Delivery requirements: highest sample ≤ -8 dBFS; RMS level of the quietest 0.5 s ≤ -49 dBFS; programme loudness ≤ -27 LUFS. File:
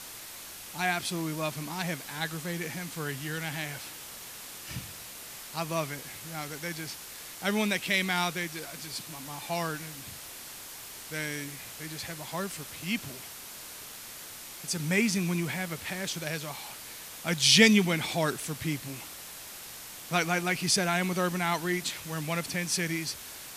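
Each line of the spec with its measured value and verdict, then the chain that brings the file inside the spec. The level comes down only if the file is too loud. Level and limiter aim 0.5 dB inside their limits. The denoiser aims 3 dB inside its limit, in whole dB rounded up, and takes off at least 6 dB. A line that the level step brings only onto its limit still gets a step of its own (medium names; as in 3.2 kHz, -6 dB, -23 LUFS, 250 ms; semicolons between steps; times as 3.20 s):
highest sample -6.0 dBFS: fail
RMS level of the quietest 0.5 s -44 dBFS: fail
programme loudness -30.0 LUFS: pass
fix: noise reduction 8 dB, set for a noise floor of -44 dBFS; peak limiter -8.5 dBFS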